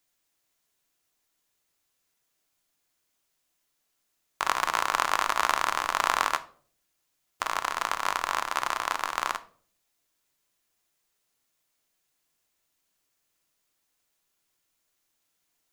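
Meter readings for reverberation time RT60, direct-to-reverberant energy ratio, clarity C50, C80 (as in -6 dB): 0.50 s, 10.0 dB, 17.5 dB, 22.0 dB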